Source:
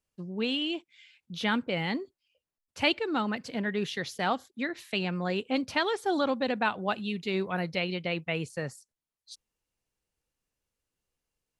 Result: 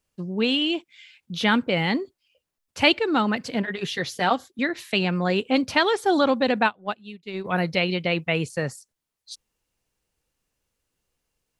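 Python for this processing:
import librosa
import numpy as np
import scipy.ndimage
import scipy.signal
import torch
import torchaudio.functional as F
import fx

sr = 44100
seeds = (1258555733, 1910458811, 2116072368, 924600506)

y = fx.notch_comb(x, sr, f0_hz=210.0, at=(3.62, 4.59))
y = fx.upward_expand(y, sr, threshold_db=-39.0, expansion=2.5, at=(6.66, 7.44), fade=0.02)
y = y * librosa.db_to_amplitude(7.5)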